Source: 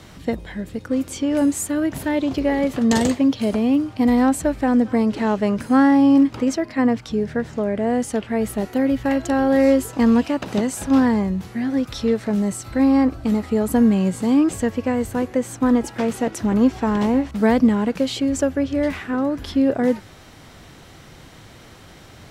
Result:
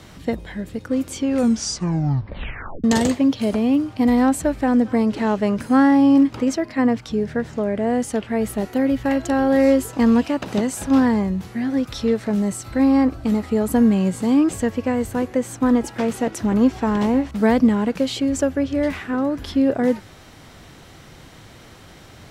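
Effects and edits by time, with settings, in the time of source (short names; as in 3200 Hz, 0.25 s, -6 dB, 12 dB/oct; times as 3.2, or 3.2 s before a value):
1.19 tape stop 1.65 s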